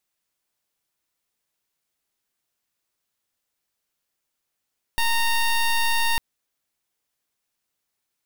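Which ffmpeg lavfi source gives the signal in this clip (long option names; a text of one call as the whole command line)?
ffmpeg -f lavfi -i "aevalsrc='0.0944*(2*lt(mod(922*t,1),0.13)-1)':duration=1.2:sample_rate=44100" out.wav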